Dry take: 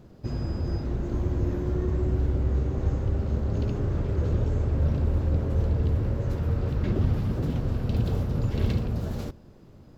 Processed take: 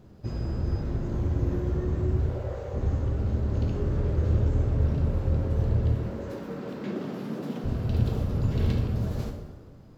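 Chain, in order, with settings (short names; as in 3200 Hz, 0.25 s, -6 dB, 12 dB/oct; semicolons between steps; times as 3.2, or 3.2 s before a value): 2.29–2.74 resonant low shelf 390 Hz -10.5 dB, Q 3; 5.94–7.64 steep high-pass 180 Hz 36 dB/oct; plate-style reverb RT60 1.5 s, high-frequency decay 0.65×, DRR 3 dB; gain -2.5 dB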